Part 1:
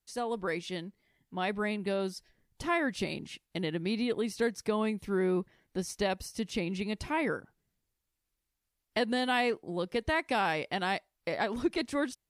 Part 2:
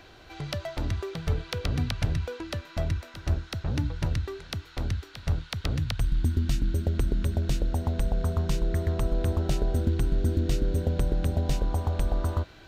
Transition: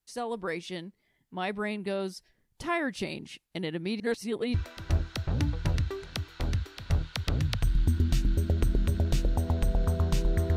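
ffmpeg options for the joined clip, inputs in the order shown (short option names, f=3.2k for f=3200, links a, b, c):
-filter_complex "[0:a]apad=whole_dur=10.56,atrim=end=10.56,asplit=2[a][b];[a]atrim=end=4.002[c];[b]atrim=start=3.998:end=4.542,asetpts=PTS-STARTPTS,areverse[d];[1:a]atrim=start=2.908:end=8.93[e];[c][d]acrossfade=d=0.004:c1=hsin:c2=hsin[f];[f][e]acrossfade=d=0.004:c1=hsin:c2=hsin"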